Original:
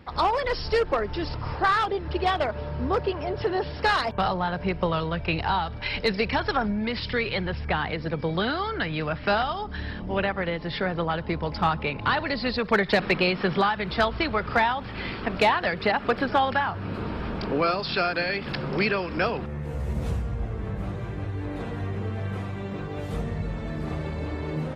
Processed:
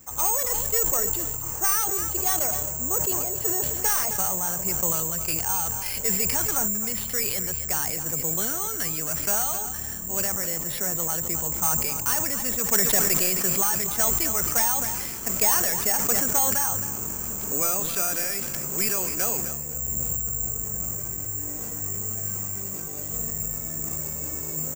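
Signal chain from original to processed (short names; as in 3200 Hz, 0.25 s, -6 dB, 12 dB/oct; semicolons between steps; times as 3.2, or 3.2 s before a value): tracing distortion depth 0.11 ms; feedback echo 0.264 s, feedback 31%, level -13.5 dB; careless resampling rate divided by 6×, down filtered, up zero stuff; sustainer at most 25 dB/s; gain -9 dB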